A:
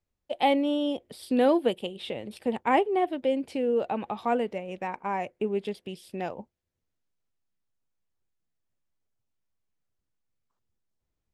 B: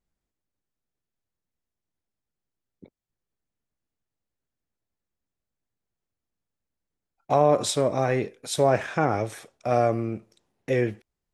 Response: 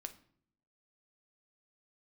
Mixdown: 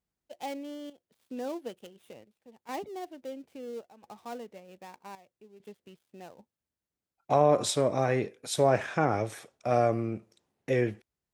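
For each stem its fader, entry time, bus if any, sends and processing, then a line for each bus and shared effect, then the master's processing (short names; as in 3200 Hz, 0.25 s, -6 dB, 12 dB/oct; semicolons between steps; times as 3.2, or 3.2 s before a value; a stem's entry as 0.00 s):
-14.0 dB, 0.00 s, no send, switching dead time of 0.11 ms; step gate "xxxx.xxxxx..x" 67 bpm -12 dB
-3.0 dB, 0.00 s, no send, dry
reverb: off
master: HPF 55 Hz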